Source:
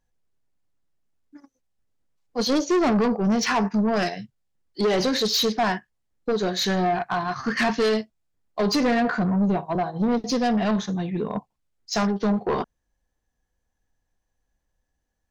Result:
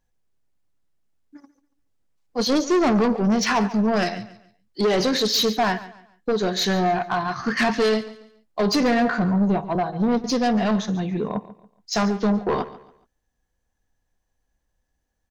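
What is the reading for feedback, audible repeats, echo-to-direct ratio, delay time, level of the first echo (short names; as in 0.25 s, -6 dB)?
32%, 2, -16.0 dB, 0.141 s, -16.5 dB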